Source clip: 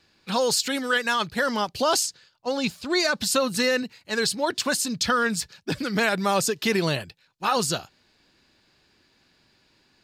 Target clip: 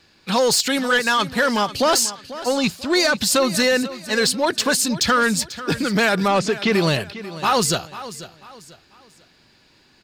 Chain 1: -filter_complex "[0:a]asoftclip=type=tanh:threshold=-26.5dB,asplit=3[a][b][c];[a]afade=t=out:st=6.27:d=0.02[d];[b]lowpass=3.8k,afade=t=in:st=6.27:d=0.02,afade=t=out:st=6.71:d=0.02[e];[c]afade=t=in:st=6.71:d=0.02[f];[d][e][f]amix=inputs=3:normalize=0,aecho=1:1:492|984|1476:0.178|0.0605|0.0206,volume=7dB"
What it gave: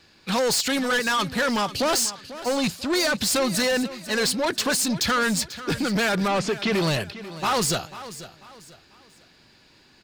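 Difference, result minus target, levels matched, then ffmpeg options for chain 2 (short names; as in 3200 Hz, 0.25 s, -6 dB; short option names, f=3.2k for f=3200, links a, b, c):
soft clip: distortion +9 dB
-filter_complex "[0:a]asoftclip=type=tanh:threshold=-17.5dB,asplit=3[a][b][c];[a]afade=t=out:st=6.27:d=0.02[d];[b]lowpass=3.8k,afade=t=in:st=6.27:d=0.02,afade=t=out:st=6.71:d=0.02[e];[c]afade=t=in:st=6.71:d=0.02[f];[d][e][f]amix=inputs=3:normalize=0,aecho=1:1:492|984|1476:0.178|0.0605|0.0206,volume=7dB"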